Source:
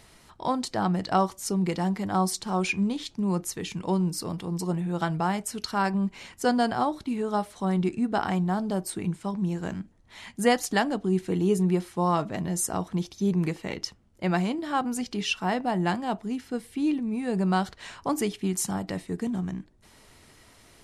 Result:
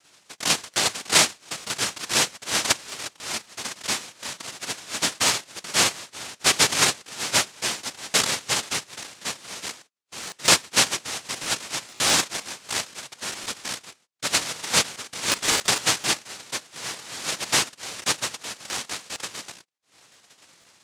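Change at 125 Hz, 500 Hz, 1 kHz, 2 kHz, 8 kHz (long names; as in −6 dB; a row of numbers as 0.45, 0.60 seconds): −11.5, −5.0, −2.5, +8.5, +13.5 decibels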